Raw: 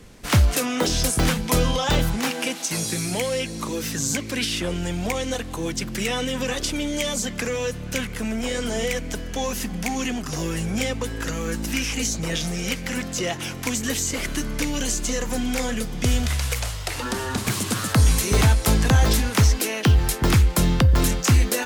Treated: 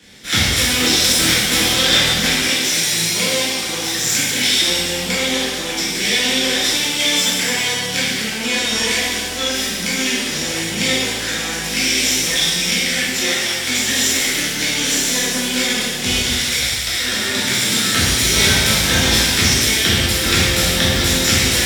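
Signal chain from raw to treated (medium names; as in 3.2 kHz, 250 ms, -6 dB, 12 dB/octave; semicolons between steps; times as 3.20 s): comb filter that takes the minimum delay 0.54 ms; frequency weighting D; pitch-shifted reverb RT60 1.5 s, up +7 st, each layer -8 dB, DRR -8.5 dB; trim -5 dB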